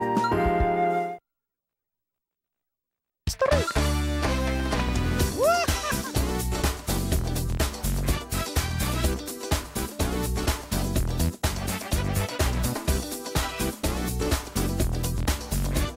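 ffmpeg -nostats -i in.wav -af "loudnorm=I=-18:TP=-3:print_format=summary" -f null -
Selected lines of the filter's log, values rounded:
Input Integrated:    -27.0 LUFS
Input True Peak:      -9.4 dBTP
Input LRA:             2.3 LU
Input Threshold:     -37.0 LUFS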